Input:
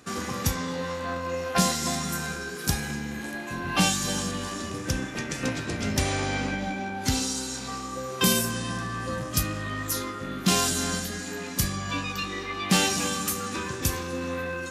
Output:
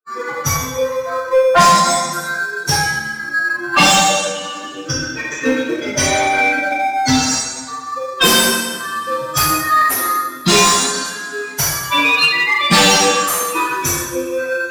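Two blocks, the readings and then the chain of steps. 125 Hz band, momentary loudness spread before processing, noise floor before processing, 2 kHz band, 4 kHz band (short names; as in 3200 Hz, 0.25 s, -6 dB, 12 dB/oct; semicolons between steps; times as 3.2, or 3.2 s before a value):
+4.0 dB, 10 LU, -36 dBFS, +15.5 dB, +13.5 dB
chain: per-bin expansion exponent 3; low shelf 92 Hz -11 dB; two-slope reverb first 0.85 s, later 2.3 s, from -18 dB, DRR -8 dB; in parallel at -11 dB: sample-and-hold 15×; on the sum: overdrive pedal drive 22 dB, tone 3700 Hz, clips at -7 dBFS; gain +6 dB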